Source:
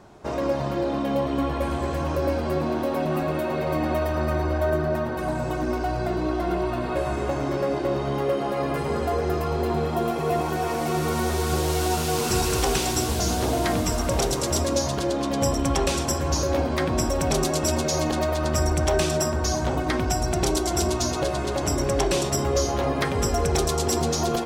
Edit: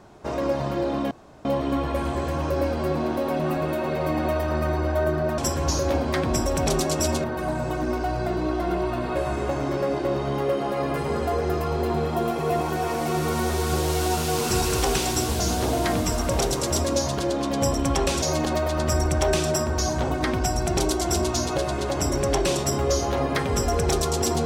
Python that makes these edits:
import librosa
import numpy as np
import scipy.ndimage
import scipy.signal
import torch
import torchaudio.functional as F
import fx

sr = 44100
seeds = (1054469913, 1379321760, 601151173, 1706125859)

y = fx.edit(x, sr, fx.insert_room_tone(at_s=1.11, length_s=0.34),
    fx.move(start_s=16.02, length_s=1.86, to_s=5.04), tone=tone)